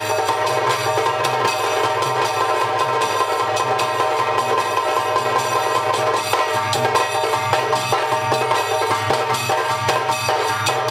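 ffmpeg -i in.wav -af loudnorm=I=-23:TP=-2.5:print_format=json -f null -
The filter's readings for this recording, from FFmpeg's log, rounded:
"input_i" : "-18.6",
"input_tp" : "-4.1",
"input_lra" : "0.4",
"input_thresh" : "-28.6",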